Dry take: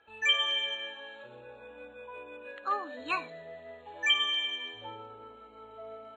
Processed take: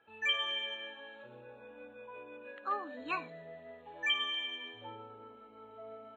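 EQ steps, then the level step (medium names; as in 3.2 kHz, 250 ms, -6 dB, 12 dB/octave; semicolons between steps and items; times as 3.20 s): high-pass 160 Hz 12 dB/octave; tone controls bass +10 dB, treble -9 dB; -4.0 dB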